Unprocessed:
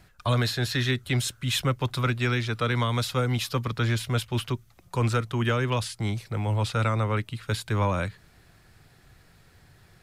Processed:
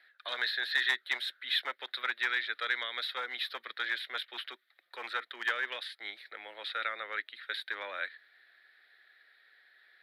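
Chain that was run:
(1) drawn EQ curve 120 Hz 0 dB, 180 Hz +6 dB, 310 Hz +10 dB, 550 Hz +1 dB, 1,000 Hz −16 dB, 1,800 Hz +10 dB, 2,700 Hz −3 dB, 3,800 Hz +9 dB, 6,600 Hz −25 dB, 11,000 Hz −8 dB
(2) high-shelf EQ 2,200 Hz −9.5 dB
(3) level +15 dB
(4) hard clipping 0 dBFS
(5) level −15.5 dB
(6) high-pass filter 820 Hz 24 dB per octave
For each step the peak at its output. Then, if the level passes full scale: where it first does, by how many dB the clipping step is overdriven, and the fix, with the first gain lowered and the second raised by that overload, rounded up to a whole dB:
−8.5, −10.5, +4.5, 0.0, −15.5, −15.0 dBFS
step 3, 4.5 dB
step 3 +10 dB, step 5 −10.5 dB

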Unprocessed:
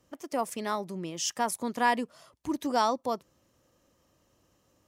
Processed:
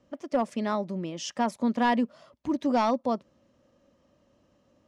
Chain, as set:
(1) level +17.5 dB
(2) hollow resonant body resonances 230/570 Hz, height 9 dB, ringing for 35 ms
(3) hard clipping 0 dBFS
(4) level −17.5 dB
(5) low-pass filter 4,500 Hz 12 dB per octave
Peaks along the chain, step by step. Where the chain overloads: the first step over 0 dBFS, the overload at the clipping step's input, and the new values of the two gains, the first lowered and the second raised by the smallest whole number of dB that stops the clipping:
+4.0, +5.5, 0.0, −17.5, −17.0 dBFS
step 1, 5.5 dB
step 1 +11.5 dB, step 4 −11.5 dB

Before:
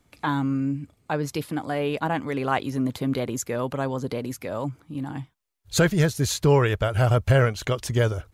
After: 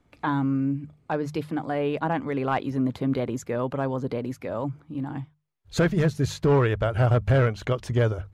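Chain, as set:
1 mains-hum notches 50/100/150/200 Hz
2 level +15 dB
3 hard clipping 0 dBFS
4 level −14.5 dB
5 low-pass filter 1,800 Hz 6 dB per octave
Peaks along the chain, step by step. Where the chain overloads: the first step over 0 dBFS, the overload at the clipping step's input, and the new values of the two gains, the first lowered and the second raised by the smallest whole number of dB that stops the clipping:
−7.5, +7.5, 0.0, −14.5, −14.5 dBFS
step 2, 7.5 dB
step 2 +7 dB, step 4 −6.5 dB

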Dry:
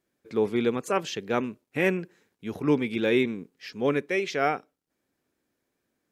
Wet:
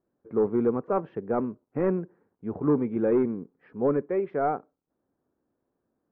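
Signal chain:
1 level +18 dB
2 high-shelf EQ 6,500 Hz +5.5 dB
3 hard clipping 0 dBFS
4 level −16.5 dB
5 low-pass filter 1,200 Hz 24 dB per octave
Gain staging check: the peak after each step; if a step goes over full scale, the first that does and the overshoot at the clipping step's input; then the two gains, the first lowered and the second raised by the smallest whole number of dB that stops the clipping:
+8.0, +8.0, 0.0, −16.5, −15.0 dBFS
step 1, 8.0 dB
step 1 +10 dB, step 4 −8.5 dB

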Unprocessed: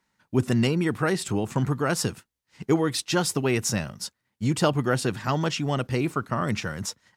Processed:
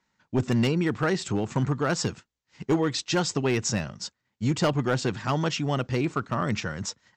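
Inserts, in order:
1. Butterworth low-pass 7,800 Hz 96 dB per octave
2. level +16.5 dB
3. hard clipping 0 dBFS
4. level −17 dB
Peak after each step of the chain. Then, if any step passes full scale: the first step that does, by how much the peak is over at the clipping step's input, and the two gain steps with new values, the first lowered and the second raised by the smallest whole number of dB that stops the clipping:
−9.5, +7.0, 0.0, −17.0 dBFS
step 2, 7.0 dB
step 2 +9.5 dB, step 4 −10 dB

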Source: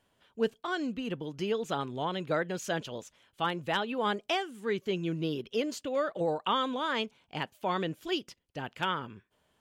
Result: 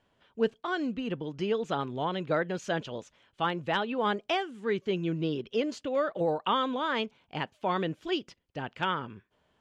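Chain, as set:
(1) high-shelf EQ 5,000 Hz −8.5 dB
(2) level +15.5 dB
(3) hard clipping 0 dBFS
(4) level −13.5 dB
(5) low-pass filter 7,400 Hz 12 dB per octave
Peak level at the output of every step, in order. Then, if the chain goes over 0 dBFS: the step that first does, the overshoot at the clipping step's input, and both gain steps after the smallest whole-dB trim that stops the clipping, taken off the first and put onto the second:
−18.0, −2.5, −2.5, −16.0, −16.0 dBFS
no step passes full scale

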